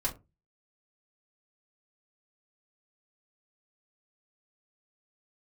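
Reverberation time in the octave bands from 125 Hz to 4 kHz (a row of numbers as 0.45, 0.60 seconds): 0.40, 0.30, 0.25, 0.20, 0.20, 0.15 seconds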